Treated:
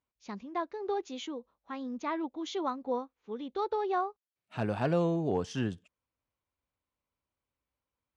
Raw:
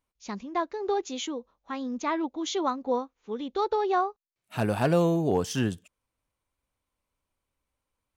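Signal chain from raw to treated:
high-pass filter 53 Hz
high-frequency loss of the air 100 metres
level −5 dB

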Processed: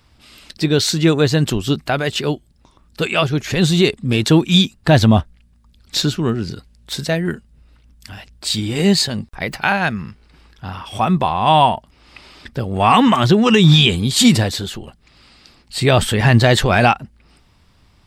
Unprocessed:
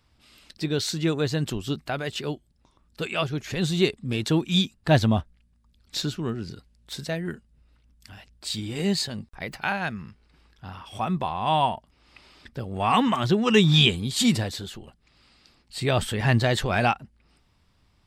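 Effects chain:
boost into a limiter +11.5 dB
level −1 dB

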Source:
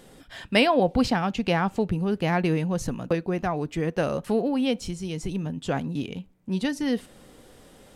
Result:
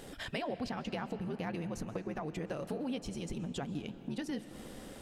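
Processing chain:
downward compressor 4 to 1, threshold −40 dBFS, peak gain reduction 20.5 dB
time stretch by overlap-add 0.63×, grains 25 ms
convolution reverb RT60 4.4 s, pre-delay 95 ms, DRR 12.5 dB
level +3 dB

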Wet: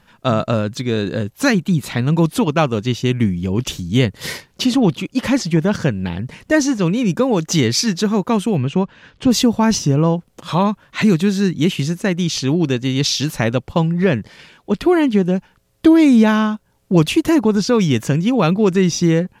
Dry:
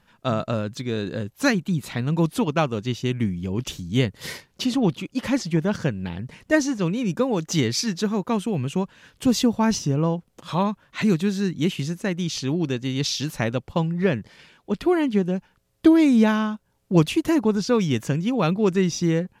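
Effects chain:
in parallel at +2.5 dB: brickwall limiter −14 dBFS, peak gain reduction 9.5 dB
0:08.57–0:09.31: on the sum: high-frequency loss of the air 130 metres

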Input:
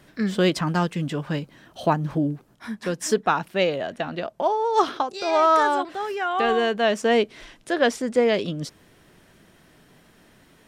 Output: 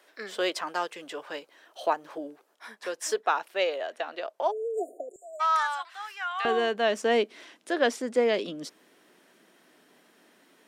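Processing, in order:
high-pass filter 420 Hz 24 dB per octave, from 0:05.16 1,000 Hz, from 0:06.45 240 Hz
0:04.51–0:05.40: time-frequency box erased 740–6,800 Hz
level −4 dB

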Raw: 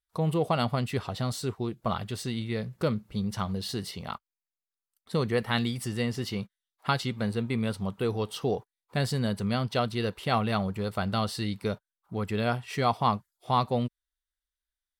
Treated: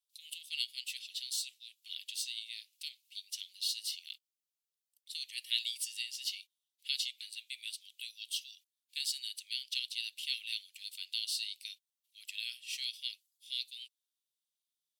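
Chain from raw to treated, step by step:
Butterworth high-pass 2,700 Hz 48 dB per octave
level +2.5 dB

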